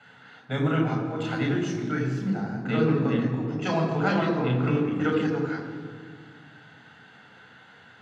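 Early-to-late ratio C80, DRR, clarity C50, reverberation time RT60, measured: 6.0 dB, 0.0 dB, 5.0 dB, 1.9 s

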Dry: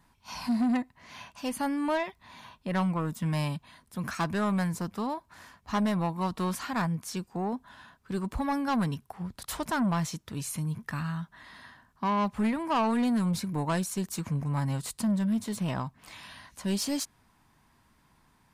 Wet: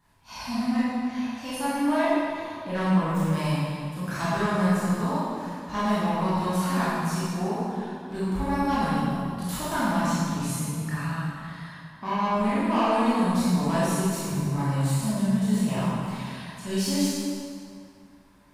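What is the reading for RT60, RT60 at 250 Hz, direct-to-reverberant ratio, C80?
2.3 s, 2.4 s, -10.5 dB, -2.0 dB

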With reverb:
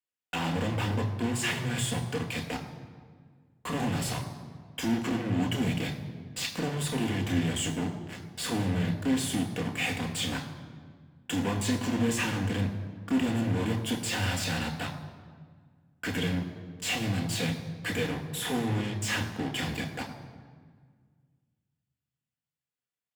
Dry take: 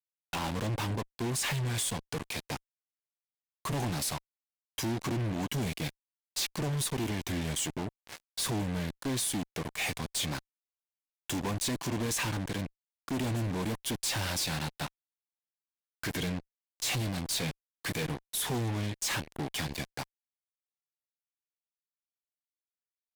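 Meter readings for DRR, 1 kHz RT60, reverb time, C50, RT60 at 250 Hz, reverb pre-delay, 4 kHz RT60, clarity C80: 2.5 dB, 1.6 s, 1.7 s, 9.0 dB, 2.3 s, 3 ms, 1.2 s, 10.0 dB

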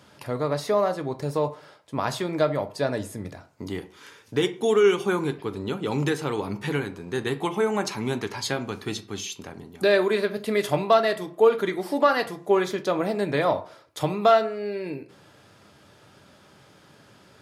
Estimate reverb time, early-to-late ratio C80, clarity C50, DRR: 0.45 s, 20.0 dB, 15.5 dB, 8.0 dB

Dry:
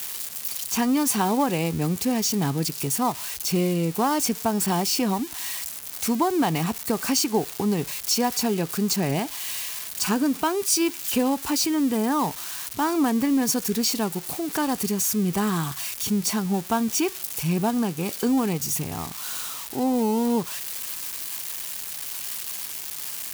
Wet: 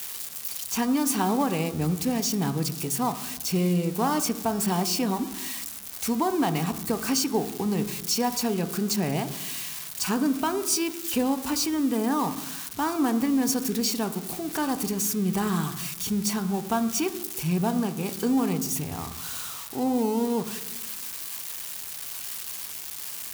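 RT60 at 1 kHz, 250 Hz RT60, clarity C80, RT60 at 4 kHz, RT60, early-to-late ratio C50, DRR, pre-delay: 0.90 s, 1.3 s, 15.0 dB, 0.75 s, 1.0 s, 13.0 dB, 9.5 dB, 3 ms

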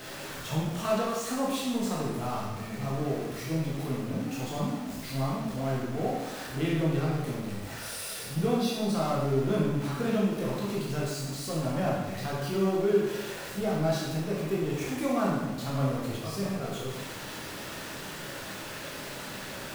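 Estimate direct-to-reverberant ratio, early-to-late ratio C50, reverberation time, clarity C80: -5.5 dB, 0.0 dB, 1.1 s, 3.0 dB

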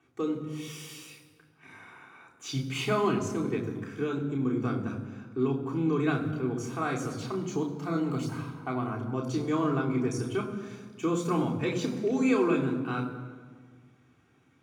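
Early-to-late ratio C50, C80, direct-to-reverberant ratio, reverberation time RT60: 8.5 dB, 10.0 dB, -2.0 dB, 1.7 s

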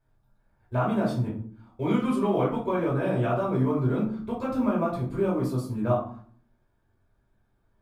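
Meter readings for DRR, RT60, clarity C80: -6.0 dB, 0.50 s, 10.0 dB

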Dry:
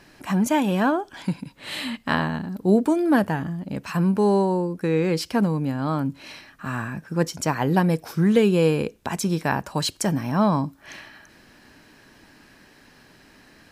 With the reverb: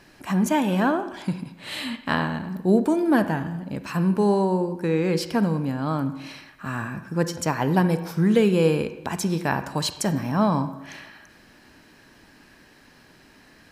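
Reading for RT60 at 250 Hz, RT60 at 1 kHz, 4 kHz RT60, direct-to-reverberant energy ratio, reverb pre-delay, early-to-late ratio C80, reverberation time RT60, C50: 0.90 s, 1.0 s, 0.80 s, 10.5 dB, 35 ms, 13.5 dB, 1.0 s, 11.5 dB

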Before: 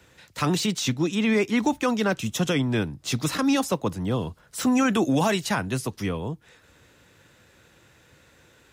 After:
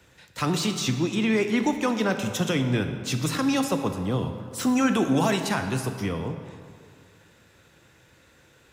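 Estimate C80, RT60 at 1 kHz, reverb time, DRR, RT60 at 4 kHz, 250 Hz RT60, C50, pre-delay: 8.5 dB, 2.1 s, 2.1 s, 6.5 dB, 1.3 s, 2.1 s, 7.5 dB, 21 ms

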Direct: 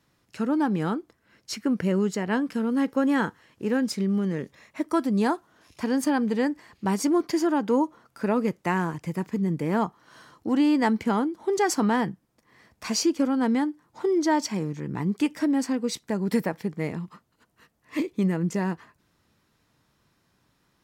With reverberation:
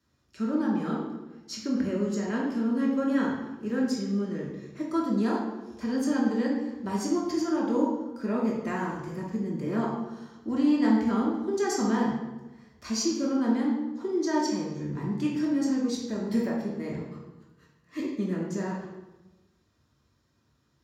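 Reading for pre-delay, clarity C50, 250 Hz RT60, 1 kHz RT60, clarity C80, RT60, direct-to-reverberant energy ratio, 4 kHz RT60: 3 ms, 1.5 dB, 1.2 s, 1.0 s, 5.0 dB, 1.1 s, -4.5 dB, 0.75 s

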